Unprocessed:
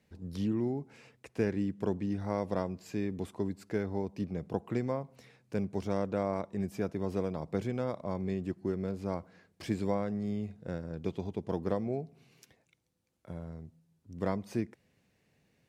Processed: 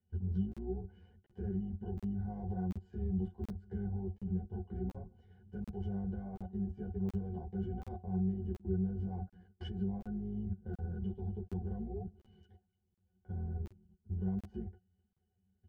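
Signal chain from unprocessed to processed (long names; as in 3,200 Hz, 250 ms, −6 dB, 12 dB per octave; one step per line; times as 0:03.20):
sub-octave generator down 2 octaves, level +3 dB
in parallel at −1 dB: downward compressor 8 to 1, threshold −40 dBFS, peak gain reduction 17 dB
on the sum: dynamic equaliser 700 Hz, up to +7 dB, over −51 dBFS, Q 4.3
brickwall limiter −24.5 dBFS, peak gain reduction 11.5 dB
output level in coarse steps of 20 dB
low-shelf EQ 180 Hz +4 dB
resonances in every octave F#, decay 0.13 s
regular buffer underruns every 0.73 s, samples 2,048, zero, from 0:00.52
string-ensemble chorus
level +11.5 dB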